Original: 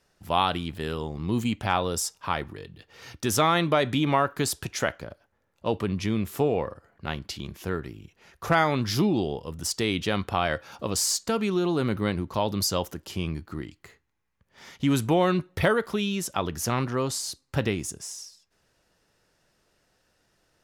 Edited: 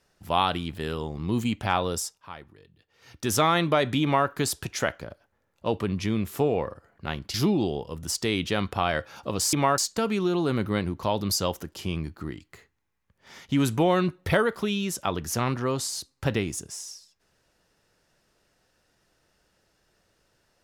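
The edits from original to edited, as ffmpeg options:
-filter_complex "[0:a]asplit=6[s0][s1][s2][s3][s4][s5];[s0]atrim=end=2.23,asetpts=PTS-STARTPTS,afade=t=out:st=1.92:d=0.31:silence=0.211349[s6];[s1]atrim=start=2.23:end=3,asetpts=PTS-STARTPTS,volume=0.211[s7];[s2]atrim=start=3:end=7.342,asetpts=PTS-STARTPTS,afade=t=in:d=0.31:silence=0.211349[s8];[s3]atrim=start=8.898:end=11.092[s9];[s4]atrim=start=4.028:end=4.282[s10];[s5]atrim=start=11.088[s11];[s6][s7][s8]concat=n=3:v=0:a=1[s12];[s12][s9]acrossfade=d=0.004:c1=hsin:c2=hsin[s13];[s13][s10]acrossfade=d=0.004:c1=hsin:c2=hsin[s14];[s14][s11]acrossfade=d=0.004:c1=hsin:c2=hsin"

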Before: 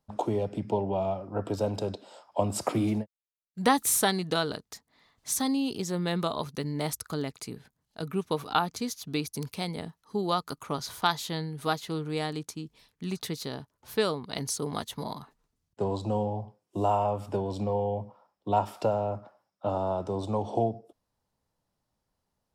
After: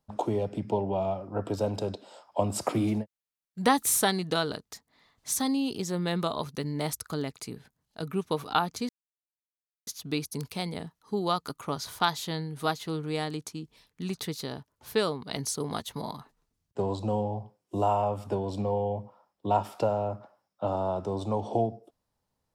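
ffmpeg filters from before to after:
-filter_complex "[0:a]asplit=2[s0][s1];[s0]atrim=end=8.89,asetpts=PTS-STARTPTS,afade=t=out:st=8.886:d=0.004:c=hsin,apad=pad_dur=0.98[s2];[s1]atrim=start=8.89,asetpts=PTS-STARTPTS,afade=t=in:d=0.004:c=hsin[s3];[s2][s3]concat=n=2:v=0:a=1"

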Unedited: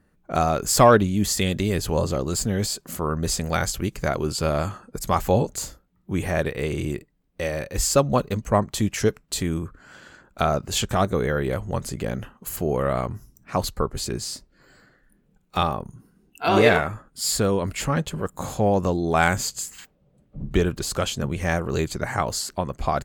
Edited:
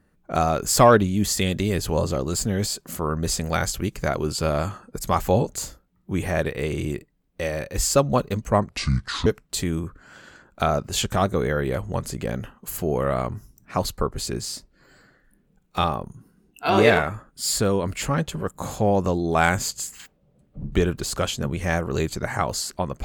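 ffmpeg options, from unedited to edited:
-filter_complex "[0:a]asplit=3[s0][s1][s2];[s0]atrim=end=8.694[s3];[s1]atrim=start=8.69:end=9.05,asetpts=PTS-STARTPTS,asetrate=27783,aresample=44100[s4];[s2]atrim=start=9.046[s5];[s3][s4]acrossfade=d=0.004:c1=hsin:c2=hsin[s6];[s6][s5]acrossfade=d=0.004:c1=hsin:c2=hsin"

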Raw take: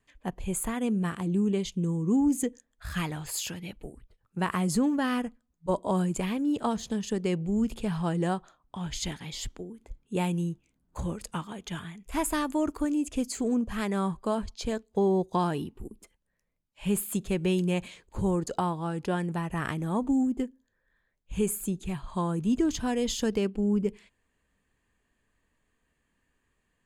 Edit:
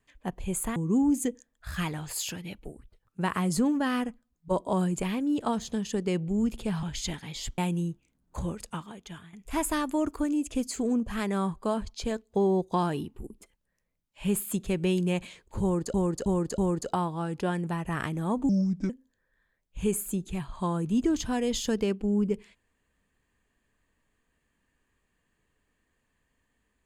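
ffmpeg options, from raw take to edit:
-filter_complex "[0:a]asplit=10[s0][s1][s2][s3][s4][s5][s6][s7][s8][s9];[s0]atrim=end=0.762[s10];[s1]atrim=start=1.938:end=8.012[s11];[s2]atrim=start=8.808:end=9.562[s12];[s3]atrim=start=10.188:end=11.94,asetpts=PTS-STARTPTS,afade=t=out:st=0.922:d=0.83:silence=0.266073[s13];[s4]atrim=start=11.94:end=18.552,asetpts=PTS-STARTPTS,afade=t=in:d=0.004:c=hsin:silence=0.266073[s14];[s5]atrim=start=18.228:end=18.552[s15];[s6]atrim=start=18.228:end=18.552[s16];[s7]atrim=start=18.228:end=20.144[s17];[s8]atrim=start=20.14:end=20.44,asetpts=PTS-STARTPTS,asetrate=32634,aresample=44100,atrim=end_sample=17878,asetpts=PTS-STARTPTS[s18];[s9]atrim=start=20.436[s19];[s10][s11]acrossfade=d=0.004:c1=hsin:c2=hsin[s20];[s20][s12]acrossfade=d=0.004:c1=hsin:c2=hsin[s21];[s13][s14]concat=n=2:v=0:a=1[s22];[s21][s22]acrossfade=d=0.004:c1=hsin:c2=hsin[s23];[s23][s15]acrossfade=d=0.004:c1=hsin:c2=hsin[s24];[s24][s16]acrossfade=d=0.004:c1=hsin:c2=hsin[s25];[s25][s17]acrossfade=d=0.004:c1=hsin:c2=hsin[s26];[s26][s18]acrossfade=d=0.004:c1=hsin:c2=hsin[s27];[s27][s19]acrossfade=d=0.004:c1=hsin:c2=hsin"

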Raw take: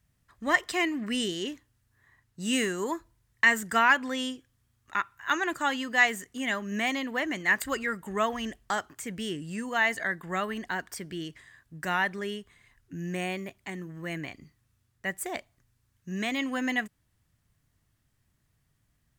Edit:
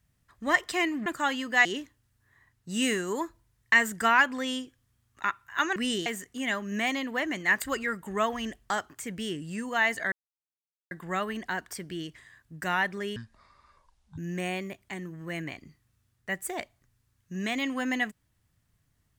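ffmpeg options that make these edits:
-filter_complex "[0:a]asplit=8[s0][s1][s2][s3][s4][s5][s6][s7];[s0]atrim=end=1.062[s8];[s1]atrim=start=5.468:end=6.062[s9];[s2]atrim=start=1.358:end=5.472[s10];[s3]atrim=start=1.058:end=1.362[s11];[s4]atrim=start=6.058:end=10.12,asetpts=PTS-STARTPTS,afade=t=out:st=4.058:d=0.004:c=hsin,apad=pad_dur=0.79[s12];[s5]atrim=start=10.12:end=12.374,asetpts=PTS-STARTPTS,afade=t=in:d=0.004:c=hsin[s13];[s6]atrim=start=12.37:end=12.94,asetpts=PTS-STARTPTS,asetrate=24696,aresample=44100,atrim=end_sample=44887,asetpts=PTS-STARTPTS[s14];[s7]atrim=start=12.936[s15];[s8][s9]acrossfade=d=0.004:c1=hsin:c2=hsin[s16];[s16][s10]acrossfade=d=0.004:c1=hsin:c2=hsin[s17];[s17][s11]acrossfade=d=0.004:c1=hsin:c2=hsin[s18];[s12][s13]concat=n=2:v=0:a=1[s19];[s18][s19]acrossfade=d=0.004:c1=hsin:c2=hsin[s20];[s20][s14]acrossfade=d=0.004:c1=hsin:c2=hsin[s21];[s21][s15]acrossfade=d=0.004:c1=hsin:c2=hsin"

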